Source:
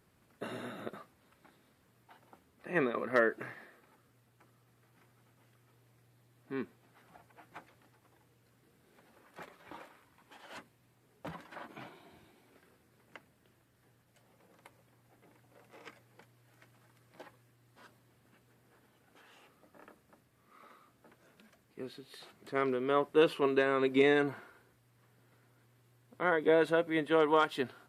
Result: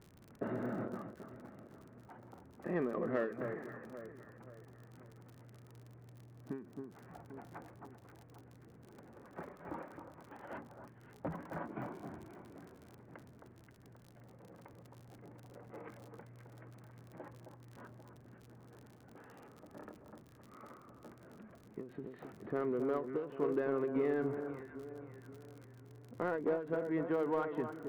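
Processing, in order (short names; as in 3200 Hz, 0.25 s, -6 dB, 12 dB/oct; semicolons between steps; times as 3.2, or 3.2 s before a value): LPF 2000 Hz 24 dB/oct; tilt shelf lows +5.5 dB, about 790 Hz; compressor 2.5:1, threshold -40 dBFS, peak gain reduction 14.5 dB; crackle 39/s -51 dBFS; echo with dull and thin repeats by turns 0.265 s, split 1400 Hz, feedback 63%, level -8 dB; in parallel at -4.5 dB: soft clip -38 dBFS, distortion -9 dB; on the sum: ending taper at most 120 dB/s; gain +1 dB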